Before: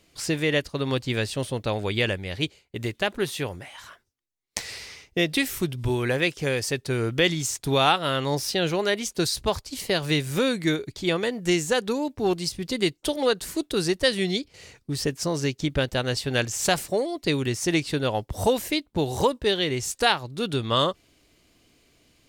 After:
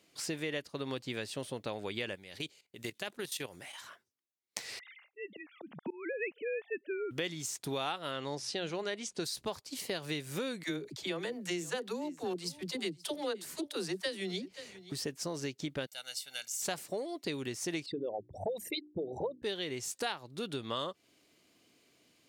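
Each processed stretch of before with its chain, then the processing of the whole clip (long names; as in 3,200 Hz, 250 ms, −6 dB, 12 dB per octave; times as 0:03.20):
0:02.15–0:03.81: high-shelf EQ 3,100 Hz +9.5 dB + output level in coarse steps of 14 dB
0:04.79–0:07.11: three sine waves on the formant tracks + volume swells 342 ms
0:08.11–0:09.24: low-pass filter 8,900 Hz 24 dB per octave + hum removal 62.28 Hz, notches 3
0:10.63–0:14.92: all-pass dispersion lows, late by 57 ms, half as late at 350 Hz + single-tap delay 527 ms −21.5 dB
0:15.86–0:16.62: high-pass filter 52 Hz + first difference + comb filter 1.4 ms, depth 70%
0:17.86–0:19.43: spectral envelope exaggerated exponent 3 + mains-hum notches 60/120/180/240/300/360 Hz
whole clip: high-pass filter 170 Hz 12 dB per octave; downward compressor 2.5 to 1, threshold −31 dBFS; level −5.5 dB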